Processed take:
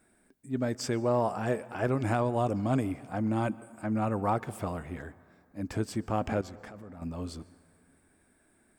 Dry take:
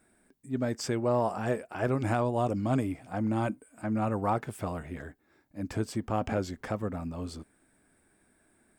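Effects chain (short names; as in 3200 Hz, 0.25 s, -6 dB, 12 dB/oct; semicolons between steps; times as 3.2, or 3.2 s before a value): 6.41–7.02 level quantiser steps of 23 dB; on a send: reverb RT60 2.2 s, pre-delay 0.112 s, DRR 19.5 dB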